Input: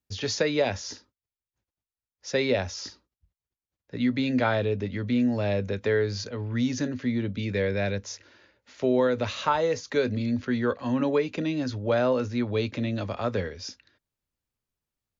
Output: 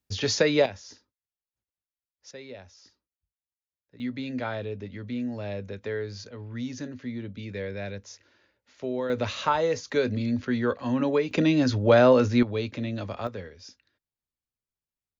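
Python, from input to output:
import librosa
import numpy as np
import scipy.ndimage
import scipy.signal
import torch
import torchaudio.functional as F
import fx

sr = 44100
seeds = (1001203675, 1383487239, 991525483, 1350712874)

y = fx.gain(x, sr, db=fx.steps((0.0, 3.0), (0.66, -9.5), (2.31, -18.0), (4.0, -7.5), (9.1, 0.0), (11.31, 6.5), (12.43, -2.5), (13.27, -9.0)))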